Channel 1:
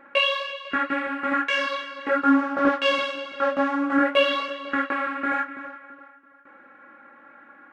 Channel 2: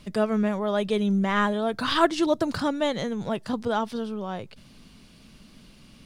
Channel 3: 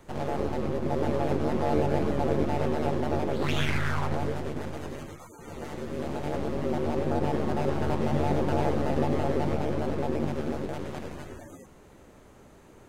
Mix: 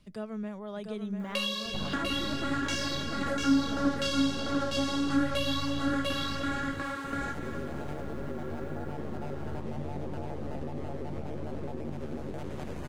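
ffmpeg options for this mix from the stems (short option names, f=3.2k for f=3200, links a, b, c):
-filter_complex "[0:a]aexciter=amount=11:drive=4.3:freq=3.7k,adelay=1200,volume=-3dB,asplit=2[a][b];[b]volume=-3.5dB[c];[1:a]volume=-15dB,asplit=2[d][e];[e]volume=-6dB[f];[2:a]acompressor=threshold=-35dB:ratio=10,adelay=1650,volume=0.5dB[g];[c][f]amix=inputs=2:normalize=0,aecho=0:1:695:1[h];[a][d][g][h]amix=inputs=4:normalize=0,lowshelf=f=240:g=5,acrossover=split=270[i][j];[j]acompressor=threshold=-34dB:ratio=3[k];[i][k]amix=inputs=2:normalize=0"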